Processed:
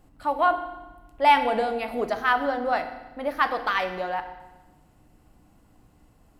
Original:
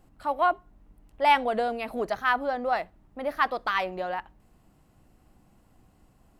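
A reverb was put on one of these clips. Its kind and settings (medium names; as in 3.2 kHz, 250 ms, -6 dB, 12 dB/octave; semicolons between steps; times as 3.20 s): FDN reverb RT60 1.1 s, low-frequency decay 1.4×, high-frequency decay 0.95×, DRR 7 dB; trim +1.5 dB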